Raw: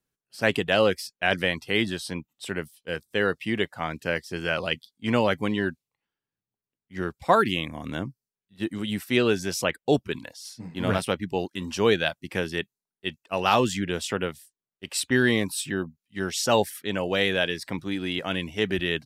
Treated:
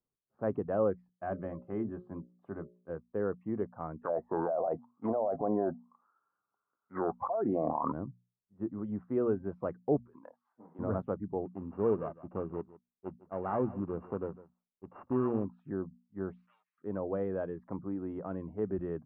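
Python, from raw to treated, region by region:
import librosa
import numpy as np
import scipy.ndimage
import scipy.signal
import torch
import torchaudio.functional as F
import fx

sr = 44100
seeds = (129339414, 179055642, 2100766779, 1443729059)

y = fx.chain(x, sr, fx.hum_notches(base_hz=60, count=10),
    fx.notch_comb(f0_hz=470.0), at=(1.17, 2.9))
y = fx.chain(y, sr, fx.auto_wah(base_hz=680.0, top_hz=1400.0, q=11.0, full_db=-23.5, direction='down'),
    fx.air_absorb(metres=320.0),
    fx.env_flatten(amount_pct=100), at=(4.03, 7.92))
y = fx.chain(y, sr, fx.highpass(hz=450.0, slope=12),
    fx.over_compress(threshold_db=-39.0, ratio=-0.5), at=(10.05, 10.79))
y = fx.chain(y, sr, fx.sample_sort(block=16),
    fx.echo_single(ms=154, db=-18.5), at=(11.45, 15.45))
y = fx.chain(y, sr, fx.halfwave_gain(db=-12.0),
    fx.cheby1_bandpass(low_hz=2400.0, high_hz=6900.0, order=3),
    fx.comb(ms=6.5, depth=0.75), at=(16.36, 16.78))
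y = scipy.signal.sosfilt(scipy.signal.cheby1(4, 1.0, 1200.0, 'lowpass', fs=sr, output='sos'), y)
y = fx.hum_notches(y, sr, base_hz=60, count=4)
y = fx.dynamic_eq(y, sr, hz=1000.0, q=1.1, threshold_db=-37.0, ratio=4.0, max_db=-4)
y = y * 10.0 ** (-6.0 / 20.0)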